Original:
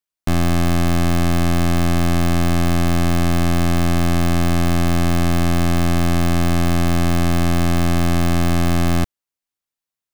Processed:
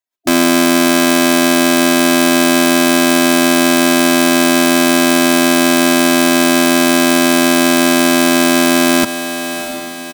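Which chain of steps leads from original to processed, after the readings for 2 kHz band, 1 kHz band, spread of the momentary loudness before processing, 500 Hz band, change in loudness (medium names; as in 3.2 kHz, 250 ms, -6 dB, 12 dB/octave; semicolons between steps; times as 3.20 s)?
+13.5 dB, +8.5 dB, 0 LU, +11.5 dB, +8.0 dB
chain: bass shelf 160 Hz +11.5 dB; short-mantissa float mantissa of 2-bit; treble shelf 2.9 kHz +6 dB; spectral gate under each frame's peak -15 dB weak; comb 3.1 ms, depth 63%; echo that smears into a reverb 679 ms, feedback 50%, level -15.5 dB; loudness maximiser +12 dB; trim -1 dB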